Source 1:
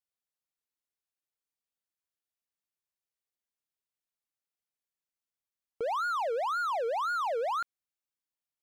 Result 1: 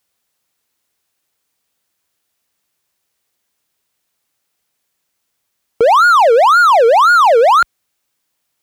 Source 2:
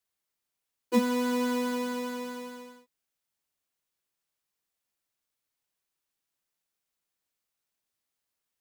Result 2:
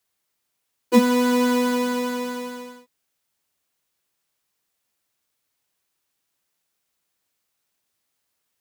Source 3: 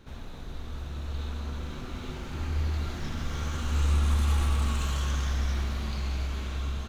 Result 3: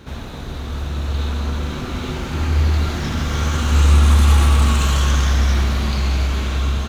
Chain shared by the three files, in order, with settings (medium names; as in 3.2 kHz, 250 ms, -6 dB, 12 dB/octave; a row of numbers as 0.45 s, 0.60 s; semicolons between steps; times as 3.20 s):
high-pass 44 Hz; peak normalisation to -3 dBFS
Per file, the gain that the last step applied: +22.5 dB, +8.5 dB, +13.0 dB